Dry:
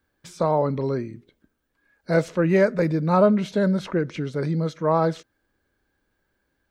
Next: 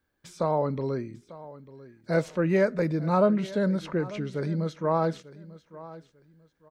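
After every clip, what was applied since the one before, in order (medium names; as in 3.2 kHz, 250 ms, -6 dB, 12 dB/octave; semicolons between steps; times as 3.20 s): feedback delay 895 ms, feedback 25%, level -18 dB; trim -4.5 dB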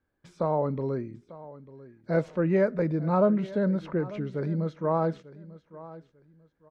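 low-pass 1.4 kHz 6 dB/octave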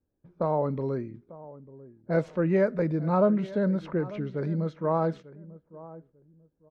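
level-controlled noise filter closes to 560 Hz, open at -25 dBFS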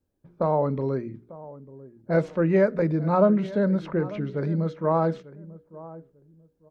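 hum notches 60/120/180/240/300/360/420/480 Hz; trim +3.5 dB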